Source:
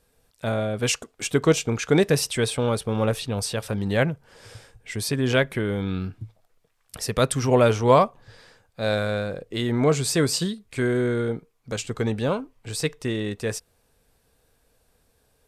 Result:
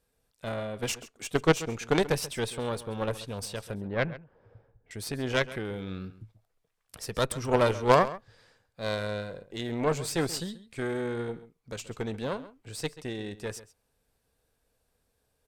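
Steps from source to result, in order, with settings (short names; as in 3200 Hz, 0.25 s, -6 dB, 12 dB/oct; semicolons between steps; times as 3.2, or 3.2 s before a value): added harmonics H 3 -13 dB, 4 -29 dB, 6 -19 dB, 8 -31 dB, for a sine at -4 dBFS; 3.75–4.91 low-pass opened by the level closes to 780 Hz, open at -17 dBFS; outdoor echo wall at 23 m, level -16 dB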